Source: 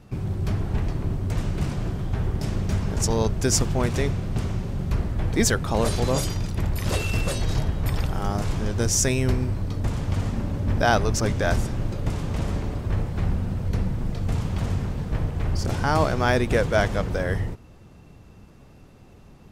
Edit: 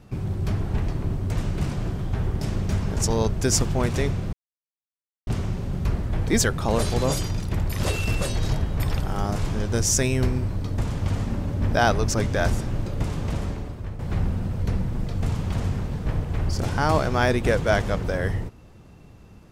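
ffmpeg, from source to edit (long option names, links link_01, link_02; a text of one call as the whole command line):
ffmpeg -i in.wav -filter_complex "[0:a]asplit=3[link_01][link_02][link_03];[link_01]atrim=end=4.33,asetpts=PTS-STARTPTS,afade=type=out:start_time=4.326:duration=0.004:curve=hsin,apad=pad_dur=0.94[link_04];[link_02]atrim=start=4.33:end=13.05,asetpts=PTS-STARTPTS,afade=type=in:duration=0.004:curve=hsin,afade=type=out:start_time=8:duration=0.72:silence=0.266073[link_05];[link_03]atrim=start=13.05,asetpts=PTS-STARTPTS,afade=type=in:duration=0.004:curve=hsin:silence=0.266073[link_06];[link_04][link_05][link_06]concat=n=3:v=0:a=1" out.wav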